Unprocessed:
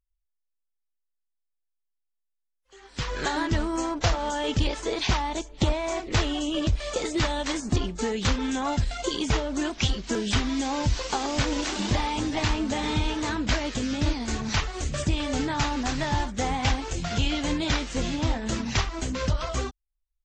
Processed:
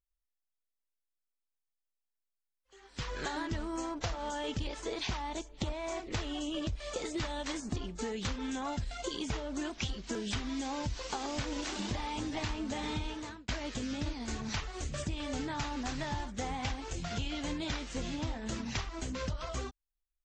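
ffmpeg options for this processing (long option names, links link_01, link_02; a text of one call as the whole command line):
ffmpeg -i in.wav -filter_complex "[0:a]asplit=2[link_01][link_02];[link_01]atrim=end=13.48,asetpts=PTS-STARTPTS,afade=type=out:start_time=13:duration=0.48[link_03];[link_02]atrim=start=13.48,asetpts=PTS-STARTPTS,afade=type=in:duration=0.004:curve=hsin[link_04];[link_03][link_04]concat=n=2:v=0:a=1,acompressor=threshold=-24dB:ratio=6,volume=-7.5dB" out.wav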